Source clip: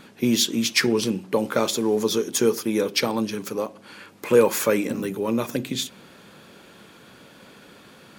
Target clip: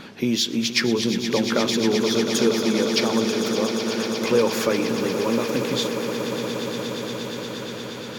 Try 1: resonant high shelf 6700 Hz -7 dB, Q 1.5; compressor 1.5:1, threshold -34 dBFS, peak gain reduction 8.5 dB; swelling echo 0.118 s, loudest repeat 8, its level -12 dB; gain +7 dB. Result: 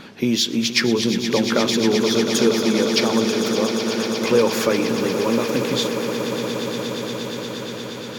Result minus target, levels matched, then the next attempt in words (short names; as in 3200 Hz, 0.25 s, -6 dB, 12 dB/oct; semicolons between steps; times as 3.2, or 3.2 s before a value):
compressor: peak gain reduction -2.5 dB
resonant high shelf 6700 Hz -7 dB, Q 1.5; compressor 1.5:1, threshold -41.5 dBFS, peak gain reduction 11 dB; swelling echo 0.118 s, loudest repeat 8, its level -12 dB; gain +7 dB